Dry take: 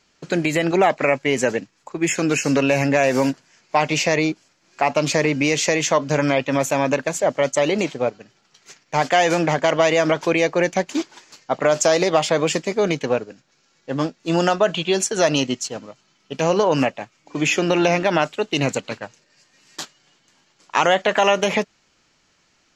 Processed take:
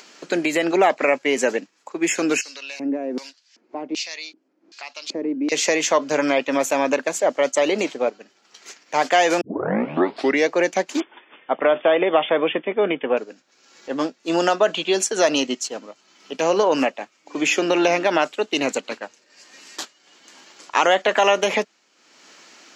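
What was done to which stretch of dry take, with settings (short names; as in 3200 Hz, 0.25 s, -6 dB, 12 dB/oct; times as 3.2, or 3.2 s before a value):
2.41–5.52 LFO band-pass square 1.3 Hz 290–4300 Hz
9.41 tape start 1.08 s
11–13.17 brick-wall FIR low-pass 3600 Hz
whole clip: HPF 240 Hz 24 dB/oct; upward compressor, threshold -34 dBFS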